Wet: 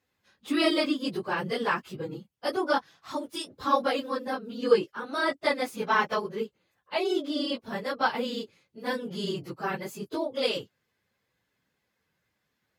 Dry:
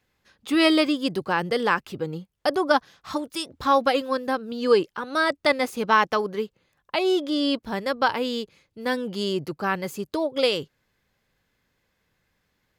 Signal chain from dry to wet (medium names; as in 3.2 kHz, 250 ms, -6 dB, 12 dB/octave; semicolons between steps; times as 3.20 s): phase randomisation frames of 50 ms; high-pass 89 Hz; trim -5 dB